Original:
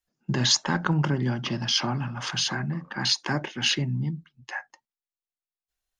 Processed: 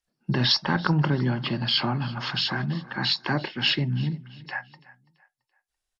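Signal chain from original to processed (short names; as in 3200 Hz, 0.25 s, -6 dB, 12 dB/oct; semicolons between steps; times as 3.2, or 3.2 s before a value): nonlinear frequency compression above 3600 Hz 1.5:1; feedback echo 0.335 s, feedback 35%, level -20 dB; gain +1.5 dB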